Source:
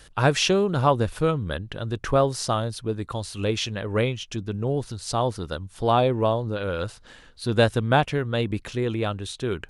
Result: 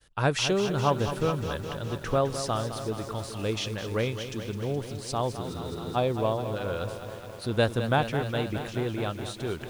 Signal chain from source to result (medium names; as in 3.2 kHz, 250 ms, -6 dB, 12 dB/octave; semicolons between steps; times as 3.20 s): expander -44 dBFS; spectral freeze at 5.43 s, 0.53 s; bit-crushed delay 210 ms, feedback 80%, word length 7-bit, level -10 dB; trim -5 dB